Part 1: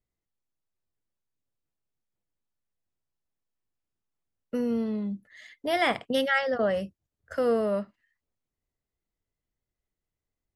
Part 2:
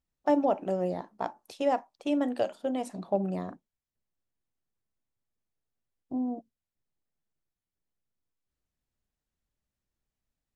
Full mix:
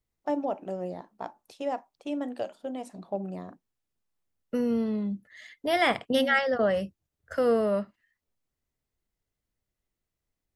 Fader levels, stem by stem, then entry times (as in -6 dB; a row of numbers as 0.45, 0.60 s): +1.0, -4.5 dB; 0.00, 0.00 s